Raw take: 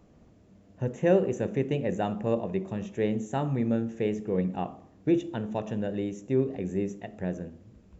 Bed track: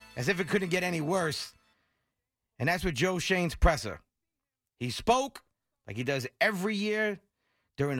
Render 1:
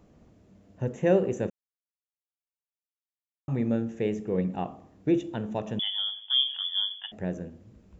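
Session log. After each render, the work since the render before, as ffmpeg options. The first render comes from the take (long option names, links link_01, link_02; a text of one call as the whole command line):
ffmpeg -i in.wav -filter_complex "[0:a]asettb=1/sr,asplit=3[link_01][link_02][link_03];[link_01]atrim=end=5.794[link_04];[link_02]atrim=start=5.79:end=7.12,asetpts=PTS-STARTPTS,afade=type=in:duration=0.004:curve=qsin,afade=type=out:start_time=1.326:duration=0.004:curve=qsin,lowpass=frequency=3100:width_type=q:width=0.5098,lowpass=frequency=3100:width_type=q:width=0.6013,lowpass=frequency=3100:width_type=q:width=0.9,lowpass=frequency=3100:width_type=q:width=2.563,afreqshift=-3600[link_05];[link_03]atrim=start=7.116[link_06];[link_04][link_05]acrossfade=duration=0.004:curve1=hsin:curve2=qsin[link_07];[link_07][link_06]acrossfade=duration=0.004:curve1=qsin:curve2=hsin,asplit=3[link_08][link_09][link_10];[link_08]atrim=end=1.5,asetpts=PTS-STARTPTS,afade=type=out:start_time=1.496:duration=0.004:curve=hsin[link_11];[link_09]atrim=start=1.5:end=3.48,asetpts=PTS-STARTPTS,volume=0[link_12];[link_10]atrim=start=3.48,asetpts=PTS-STARTPTS,afade=type=in:duration=0.004:curve=hsin[link_13];[link_11][link_12][link_13]concat=n=3:v=0:a=1" out.wav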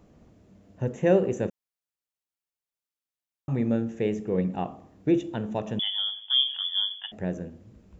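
ffmpeg -i in.wav -af "volume=1.5dB" out.wav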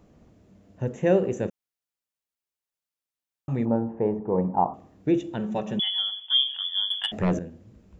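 ffmpeg -i in.wav -filter_complex "[0:a]asettb=1/sr,asplit=3[link_01][link_02][link_03];[link_01]atrim=end=3.654[link_04];[link_02]atrim=start=3.65:end=4.74,asetpts=PTS-STARTPTS,afade=type=in:duration=0.004:curve=qsin,afade=type=out:start_time=1.086:duration=0.004:curve=qsin,lowpass=frequency=920:width_type=q:width=7.1[link_05];[link_03]atrim=start=4.736[link_06];[link_04][link_05]acrossfade=duration=0.004:curve1=hsin:curve2=qsin[link_07];[link_07][link_06]acrossfade=duration=0.004:curve1=qsin:curve2=hsin,asettb=1/sr,asplit=3[link_08][link_09][link_10];[link_08]atrim=end=5.384[link_11];[link_09]atrim=start=5.38:end=6.37,asetpts=PTS-STARTPTS,afade=type=in:duration=0.004:curve=qsin,afade=type=out:start_time=0.986:duration=0.004:curve=qsin,aecho=1:1:5.3:0.65,atrim=end_sample=43659[link_12];[link_10]atrim=start=6.366[link_13];[link_11][link_12]acrossfade=duration=0.004:curve1=hsin:curve2=qsin[link_14];[link_14][link_13]acrossfade=duration=0.004:curve1=qsin:curve2=hsin,asettb=1/sr,asplit=3[link_15][link_16][link_17];[link_15]atrim=end=6.904[link_18];[link_16]atrim=start=6.9:end=7.39,asetpts=PTS-STARTPTS,afade=type=in:duration=0.004:curve=qsin,afade=type=out:start_time=0.486:duration=0.004:curve=qsin,aeval=exprs='0.15*sin(PI/2*2*val(0)/0.15)':channel_layout=same[link_19];[link_17]atrim=start=7.386[link_20];[link_18][link_19]acrossfade=duration=0.004:curve1=hsin:curve2=qsin[link_21];[link_21][link_20]acrossfade=duration=0.004:curve1=qsin:curve2=hsin" out.wav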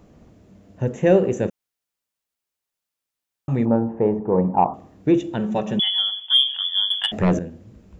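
ffmpeg -i in.wav -af "acontrast=40" out.wav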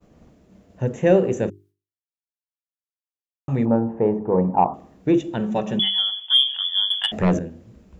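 ffmpeg -i in.wav -af "agate=range=-33dB:threshold=-48dB:ratio=3:detection=peak,bandreject=frequency=50:width_type=h:width=6,bandreject=frequency=100:width_type=h:width=6,bandreject=frequency=150:width_type=h:width=6,bandreject=frequency=200:width_type=h:width=6,bandreject=frequency=250:width_type=h:width=6,bandreject=frequency=300:width_type=h:width=6,bandreject=frequency=350:width_type=h:width=6,bandreject=frequency=400:width_type=h:width=6" out.wav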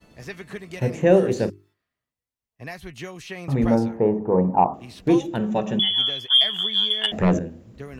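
ffmpeg -i in.wav -i bed.wav -filter_complex "[1:a]volume=-8dB[link_01];[0:a][link_01]amix=inputs=2:normalize=0" out.wav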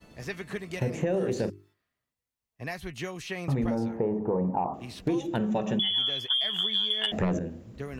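ffmpeg -i in.wav -af "alimiter=limit=-13.5dB:level=0:latency=1:release=11,acompressor=threshold=-24dB:ratio=6" out.wav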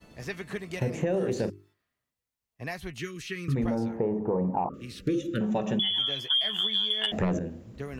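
ffmpeg -i in.wav -filter_complex "[0:a]asettb=1/sr,asplit=3[link_01][link_02][link_03];[link_01]atrim=end=2.994[link_04];[link_02]atrim=start=2.99:end=3.56,asetpts=PTS-STARTPTS,afade=type=in:duration=0.004:curve=qsin,afade=type=out:start_time=0.566:duration=0.004:curve=qsin,asuperstop=centerf=740:order=8:qfactor=0.97[link_05];[link_03]atrim=start=3.556[link_06];[link_04][link_05]acrossfade=duration=0.004:curve1=hsin:curve2=qsin[link_07];[link_07][link_06]acrossfade=duration=0.004:curve1=qsin:curve2=hsin,asettb=1/sr,asplit=3[link_08][link_09][link_10];[link_08]atrim=end=4.694[link_11];[link_09]atrim=start=4.69:end=5.41,asetpts=PTS-STARTPTS,afade=type=in:duration=0.004:curve=qsin,afade=type=out:start_time=0.716:duration=0.004:curve=qsin,asuperstop=centerf=830:order=20:qfactor=1.4[link_12];[link_10]atrim=start=5.406[link_13];[link_11][link_12]acrossfade=duration=0.004:curve1=hsin:curve2=qsin[link_14];[link_14][link_13]acrossfade=duration=0.004:curve1=qsin:curve2=hsin,asettb=1/sr,asplit=3[link_15][link_16][link_17];[link_15]atrim=end=5.944[link_18];[link_16]atrim=start=5.94:end=6.67,asetpts=PTS-STARTPTS,afade=type=in:duration=0.004:curve=qsin,afade=type=out:start_time=0.726:duration=0.004:curve=qsin,asplit=2[link_19][link_20];[link_20]adelay=14,volume=-7dB[link_21];[link_19][link_21]amix=inputs=2:normalize=0,atrim=end_sample=32193[link_22];[link_17]atrim=start=6.666[link_23];[link_18][link_22]acrossfade=duration=0.004:curve1=hsin:curve2=qsin[link_24];[link_24][link_23]acrossfade=duration=0.004:curve1=qsin:curve2=hsin" out.wav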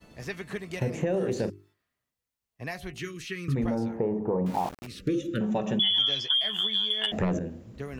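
ffmpeg -i in.wav -filter_complex "[0:a]asettb=1/sr,asplit=3[link_01][link_02][link_03];[link_01]atrim=end=2.714[link_04];[link_02]atrim=start=2.71:end=3.25,asetpts=PTS-STARTPTS,afade=type=in:duration=0.004:curve=qsin,afade=type=out:start_time=0.536:duration=0.004:curve=qsin,bandreject=frequency=54.94:width_type=h:width=4,bandreject=frequency=109.88:width_type=h:width=4,bandreject=frequency=164.82:width_type=h:width=4,bandreject=frequency=219.76:width_type=h:width=4,bandreject=frequency=274.7:width_type=h:width=4,bandreject=frequency=329.64:width_type=h:width=4,bandreject=frequency=384.58:width_type=h:width=4,bandreject=frequency=439.52:width_type=h:width=4,bandreject=frequency=494.46:width_type=h:width=4,bandreject=frequency=549.4:width_type=h:width=4,bandreject=frequency=604.34:width_type=h:width=4,bandreject=frequency=659.28:width_type=h:width=4,bandreject=frequency=714.22:width_type=h:width=4,bandreject=frequency=769.16:width_type=h:width=4[link_05];[link_03]atrim=start=3.246[link_06];[link_04][link_05]acrossfade=duration=0.004:curve1=hsin:curve2=qsin[link_07];[link_07][link_06]acrossfade=duration=0.004:curve1=qsin:curve2=hsin,asettb=1/sr,asplit=3[link_08][link_09][link_10];[link_08]atrim=end=4.464[link_11];[link_09]atrim=start=4.46:end=4.87,asetpts=PTS-STARTPTS,afade=type=in:duration=0.004:curve=qsin,afade=type=out:start_time=0.406:duration=0.004:curve=qsin,aeval=exprs='val(0)*gte(abs(val(0)),0.0141)':channel_layout=same[link_12];[link_10]atrim=start=4.866[link_13];[link_11][link_12]acrossfade=duration=0.004:curve1=hsin:curve2=qsin[link_14];[link_14][link_13]acrossfade=duration=0.004:curve1=qsin:curve2=hsin,asettb=1/sr,asplit=3[link_15][link_16][link_17];[link_15]atrim=end=5.804[link_18];[link_16]atrim=start=5.8:end=6.31,asetpts=PTS-STARTPTS,afade=type=in:duration=0.004:curve=qsin,afade=type=out:start_time=0.506:duration=0.004:curve=qsin,lowpass=frequency=5300:width_type=q:width=3.8[link_19];[link_17]atrim=start=6.306[link_20];[link_18][link_19]acrossfade=duration=0.004:curve1=hsin:curve2=qsin[link_21];[link_21][link_20]acrossfade=duration=0.004:curve1=qsin:curve2=hsin" out.wav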